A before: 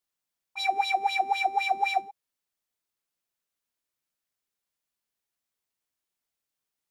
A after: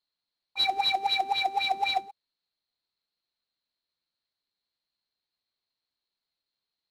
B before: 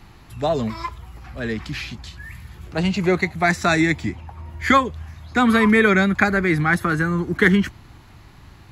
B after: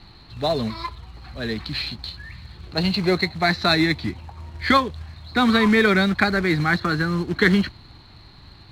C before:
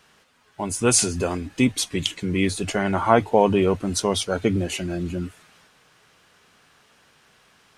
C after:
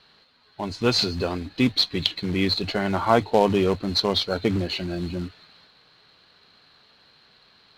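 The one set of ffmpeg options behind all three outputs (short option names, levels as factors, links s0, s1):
-af "lowpass=f=4200:t=q:w=16,acrusher=bits=3:mode=log:mix=0:aa=0.000001,aemphasis=mode=reproduction:type=75fm,volume=0.75"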